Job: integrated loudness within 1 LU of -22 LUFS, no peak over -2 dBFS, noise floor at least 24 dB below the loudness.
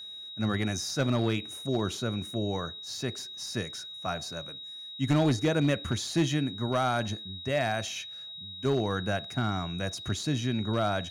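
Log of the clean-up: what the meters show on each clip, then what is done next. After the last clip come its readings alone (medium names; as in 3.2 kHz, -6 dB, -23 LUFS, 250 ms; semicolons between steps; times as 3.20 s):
clipped samples 0.5%; clipping level -18.5 dBFS; steady tone 3.8 kHz; tone level -40 dBFS; loudness -30.5 LUFS; peak level -18.5 dBFS; loudness target -22.0 LUFS
-> clip repair -18.5 dBFS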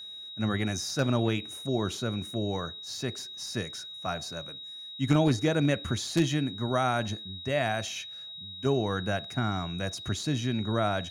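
clipped samples 0.0%; steady tone 3.8 kHz; tone level -40 dBFS
-> band-stop 3.8 kHz, Q 30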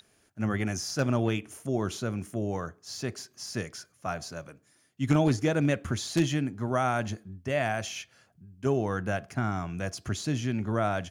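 steady tone not found; loudness -30.5 LUFS; peak level -11.0 dBFS; loudness target -22.0 LUFS
-> trim +8.5 dB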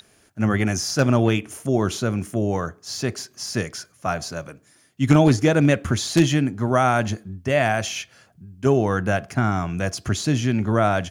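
loudness -22.0 LUFS; peak level -2.5 dBFS; noise floor -58 dBFS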